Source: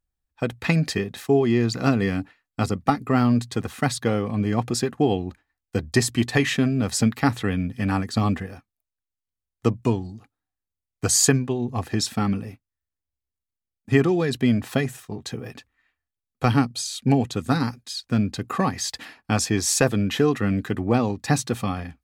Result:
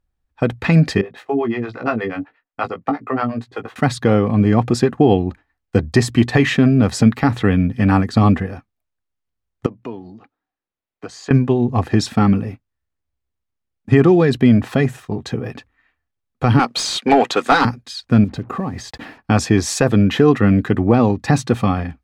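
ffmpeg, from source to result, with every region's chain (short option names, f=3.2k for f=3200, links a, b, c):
-filter_complex "[0:a]asettb=1/sr,asplit=3[a][b][c];[a]atrim=end=1.014[d];[b]atrim=start=1.01:end=3.76,asetpts=PTS-STARTPTS,afade=t=in:d=0.004:c=qsin,afade=t=out:st=2.746:d=0.004:c=qsin,bass=f=250:g=-15,treble=f=4k:g=-11,acrossover=split=440[e][f];[e]aeval=exprs='val(0)*(1-1/2+1/2*cos(2*PI*8.4*n/s))':c=same[g];[f]aeval=exprs='val(0)*(1-1/2-1/2*cos(2*PI*8.4*n/s))':c=same[h];[g][h]amix=inputs=2:normalize=0,asplit=2[i][j];[j]adelay=18,volume=-6.5dB[k];[i][k]amix=inputs=2:normalize=0,atrim=end_sample=121275[l];[c]atrim=start=3.756[m];[d][l]acrossfade=d=0.004:c1=hsin:c2=qsin[n];[n][m]acrossfade=d=0.004:c1=qsin:c2=hsin,asettb=1/sr,asplit=3[o][p][q];[o]atrim=end=9.664[r];[p]atrim=start=9.66:end=11.31,asetpts=PTS-STARTPTS,afade=t=in:d=0.004:c=qsin,afade=t=out:st=1.646:d=0.004:c=qsin,acrossover=split=210 5200:gain=0.141 1 0.112[s][t][u];[s][t][u]amix=inputs=3:normalize=0,acompressor=threshold=-46dB:ratio=2:attack=3.2:release=140:knee=1:detection=peak[v];[q]atrim=start=11.306[w];[r][v]acrossfade=d=0.004:c1=hsin:c2=qsin[x];[x][w]acrossfade=d=0.004:c1=qsin:c2=hsin,asettb=1/sr,asplit=3[y][z][aa];[y]atrim=end=16.594[ab];[z]atrim=start=16.59:end=17.65,asetpts=PTS-STARTPTS,afade=t=in:d=0.004:c=qsin,afade=t=out:st=1.056:d=0.004:c=qsin,highpass=400,asplit=2[ac][ad];[ad]highpass=f=720:p=1,volume=18dB,asoftclip=type=tanh:threshold=-10.5dB[ae];[ac][ae]amix=inputs=2:normalize=0,lowpass=f=5.6k:p=1,volume=-6dB[af];[aa]atrim=start=17.646[ag];[ab][af]acrossfade=d=0.004:c1=hsin:c2=qsin[ah];[ah][ag]acrossfade=d=0.004:c1=qsin:c2=hsin,asettb=1/sr,asplit=3[ai][aj][ak];[ai]atrim=end=18.244[al];[aj]atrim=start=18.24:end=19.18,asetpts=PTS-STARTPTS,afade=t=in:d=0.004:c=qsin,afade=t=out:st=0.936:d=0.004:c=qsin,tiltshelf=f=840:g=4.5,acompressor=threshold=-32dB:ratio=3:attack=3.2:release=140:knee=1:detection=peak,acrusher=bits=8:mix=0:aa=0.5[am];[ak]atrim=start=19.176[an];[al][am]acrossfade=d=0.004:c1=hsin:c2=qsin[ao];[ao][an]acrossfade=d=0.004:c1=qsin:c2=hsin,lowpass=f=1.9k:p=1,alimiter=level_in=10.5dB:limit=-1dB:release=50:level=0:latency=1,volume=-1dB"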